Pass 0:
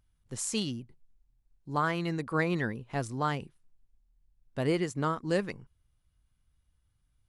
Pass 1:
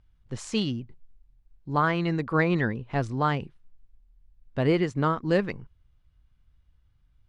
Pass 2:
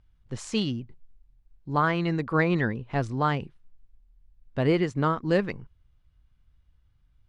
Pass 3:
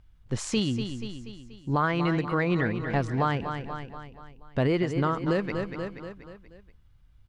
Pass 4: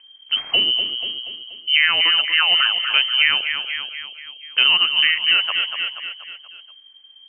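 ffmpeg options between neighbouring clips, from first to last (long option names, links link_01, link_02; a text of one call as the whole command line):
ffmpeg -i in.wav -af "lowpass=3900,lowshelf=frequency=79:gain=6,volume=5dB" out.wav
ffmpeg -i in.wav -af anull out.wav
ffmpeg -i in.wav -af "aecho=1:1:240|480|720|960|1200:0.282|0.141|0.0705|0.0352|0.0176,alimiter=limit=-20dB:level=0:latency=1:release=431,volume=5dB" out.wav
ffmpeg -i in.wav -af "lowpass=frequency=2700:width_type=q:width=0.5098,lowpass=frequency=2700:width_type=q:width=0.6013,lowpass=frequency=2700:width_type=q:width=0.9,lowpass=frequency=2700:width_type=q:width=2.563,afreqshift=-3200,volume=8.5dB" out.wav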